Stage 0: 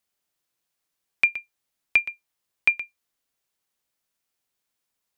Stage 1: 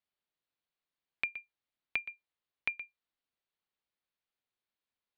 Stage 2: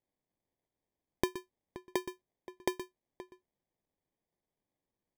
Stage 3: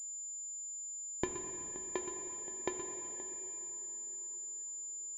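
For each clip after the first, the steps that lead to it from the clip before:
Butterworth low-pass 4,500 Hz 48 dB per octave; downward compressor, threshold −22 dBFS, peak gain reduction 8 dB; level −8.5 dB
decimation without filtering 32×; slap from a distant wall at 90 metres, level −15 dB; level +2 dB
dense smooth reverb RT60 4.4 s, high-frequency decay 0.75×, DRR 4.5 dB; switching amplifier with a slow clock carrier 7,100 Hz; level −4.5 dB

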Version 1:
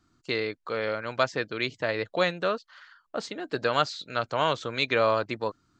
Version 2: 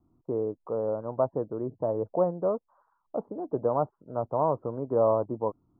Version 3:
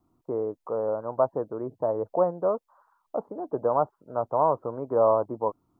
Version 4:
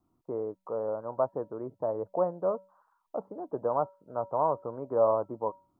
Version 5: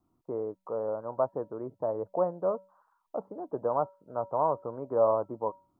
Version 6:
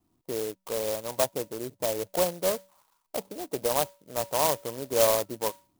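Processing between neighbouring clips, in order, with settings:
Butterworth low-pass 1,000 Hz 48 dB per octave; level +1.5 dB
low-shelf EQ 500 Hz −12 dB; level +7.5 dB
tuned comb filter 190 Hz, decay 0.38 s, harmonics odd, mix 50%; level +1 dB
no processing that can be heard
converter with an unsteady clock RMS 0.13 ms; level +2 dB

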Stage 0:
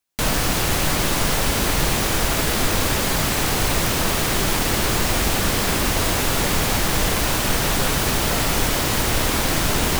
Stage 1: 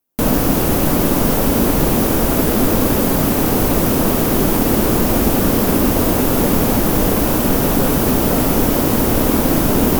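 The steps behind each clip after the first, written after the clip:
graphic EQ with 10 bands 250 Hz +10 dB, 500 Hz +4 dB, 2,000 Hz −6 dB, 4,000 Hz −7 dB, 8,000 Hz −7 dB, 16,000 Hz +7 dB
level +2.5 dB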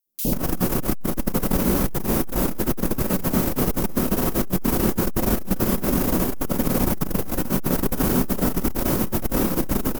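three-band delay without the direct sound highs, lows, mids 60/140 ms, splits 660/3,200 Hz
rectangular room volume 400 cubic metres, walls furnished, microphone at 1 metre
saturating transformer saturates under 120 Hz
level −4.5 dB

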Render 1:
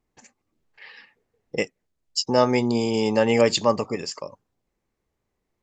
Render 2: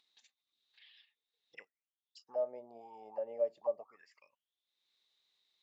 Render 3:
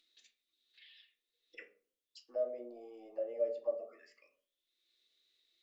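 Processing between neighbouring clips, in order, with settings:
envelope filter 600–3,800 Hz, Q 13, down, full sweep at −17 dBFS; upward compression, threshold −43 dBFS; level −9 dB
phaser with its sweep stopped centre 370 Hz, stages 4; convolution reverb RT60 0.45 s, pre-delay 3 ms, DRR 0.5 dB; level +1.5 dB

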